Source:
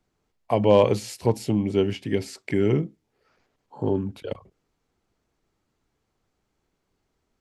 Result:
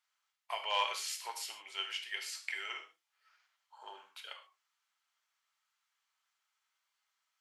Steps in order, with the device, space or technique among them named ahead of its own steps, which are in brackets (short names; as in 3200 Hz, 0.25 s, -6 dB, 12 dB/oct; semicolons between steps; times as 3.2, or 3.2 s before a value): headphones lying on a table (HPF 1100 Hz 24 dB/oct; bell 3200 Hz +4 dB 0.27 oct); non-linear reverb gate 0.16 s falling, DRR 3 dB; gain -3.5 dB